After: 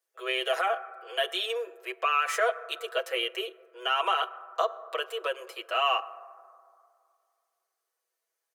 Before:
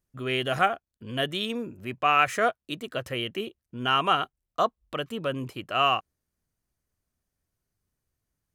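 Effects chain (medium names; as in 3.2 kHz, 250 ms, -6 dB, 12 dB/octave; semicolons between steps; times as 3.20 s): on a send at -17.5 dB: reverberation RT60 2.2 s, pre-delay 6 ms; on the sum: peak limiter -18 dBFS, peak gain reduction 10.5 dB; steep high-pass 380 Hz 96 dB/octave; comb 6.1 ms, depth 83%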